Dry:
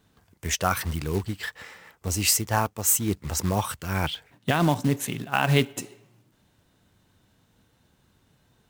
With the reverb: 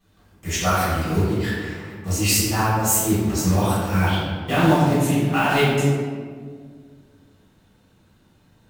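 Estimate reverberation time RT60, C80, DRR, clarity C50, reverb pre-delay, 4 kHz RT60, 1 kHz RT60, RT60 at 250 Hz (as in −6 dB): 1.9 s, 1.0 dB, −12.0 dB, −1.5 dB, 4 ms, 0.95 s, 1.6 s, 2.4 s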